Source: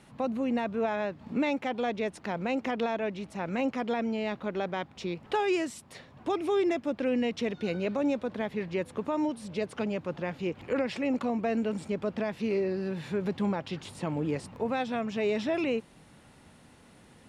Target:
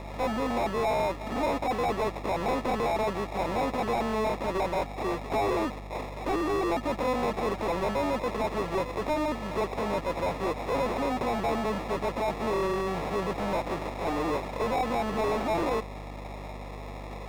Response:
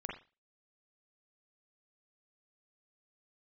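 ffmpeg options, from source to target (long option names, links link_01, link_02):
-filter_complex "[0:a]lowpass=frequency=4800:width=0.5412,lowpass=frequency=4800:width=1.3066,acrossover=split=1300[link_01][link_02];[link_01]asoftclip=type=hard:threshold=-33dB[link_03];[link_03][link_02]amix=inputs=2:normalize=0,highpass=frequency=930:poles=1,highshelf=frequency=2000:gain=-11,acrusher=samples=29:mix=1:aa=0.000001,asplit=2[link_04][link_05];[link_05]highpass=frequency=720:poles=1,volume=28dB,asoftclip=type=tanh:threshold=-26dB[link_06];[link_04][link_06]amix=inputs=2:normalize=0,lowpass=frequency=1900:poles=1,volume=-6dB,aeval=exprs='val(0)+0.00447*(sin(2*PI*50*n/s)+sin(2*PI*2*50*n/s)/2+sin(2*PI*3*50*n/s)/3+sin(2*PI*4*50*n/s)/4+sin(2*PI*5*50*n/s)/5)':channel_layout=same,volume=7dB"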